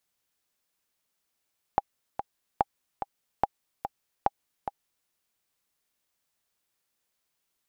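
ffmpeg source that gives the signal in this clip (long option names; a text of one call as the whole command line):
ffmpeg -f lavfi -i "aevalsrc='pow(10,(-8.5-9*gte(mod(t,2*60/145),60/145))/20)*sin(2*PI*807*mod(t,60/145))*exp(-6.91*mod(t,60/145)/0.03)':duration=3.31:sample_rate=44100" out.wav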